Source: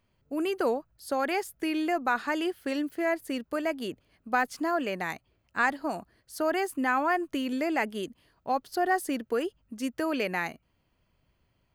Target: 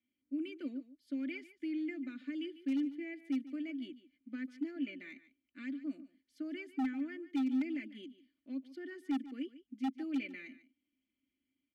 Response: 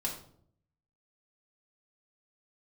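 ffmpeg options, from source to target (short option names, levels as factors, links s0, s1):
-filter_complex "[0:a]aecho=1:1:3.4:0.75,acrossover=split=630|2600[s0][s1][s2];[s1]alimiter=limit=0.0794:level=0:latency=1:release=257[s3];[s0][s3][s2]amix=inputs=3:normalize=0,asplit=3[s4][s5][s6];[s4]bandpass=f=270:t=q:w=8,volume=1[s7];[s5]bandpass=f=2290:t=q:w=8,volume=0.501[s8];[s6]bandpass=f=3010:t=q:w=8,volume=0.355[s9];[s7][s8][s9]amix=inputs=3:normalize=0,aeval=exprs='0.0596*(abs(mod(val(0)/0.0596+3,4)-2)-1)':c=same,aecho=1:1:146:0.158,volume=0.668"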